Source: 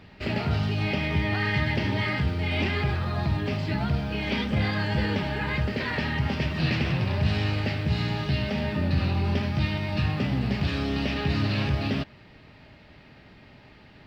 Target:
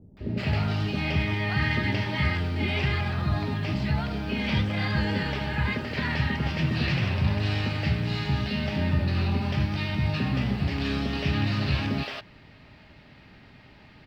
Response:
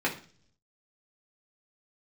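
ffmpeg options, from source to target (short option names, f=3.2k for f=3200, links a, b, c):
-filter_complex "[0:a]acrossover=split=490[a][b];[b]adelay=170[c];[a][c]amix=inputs=2:normalize=0"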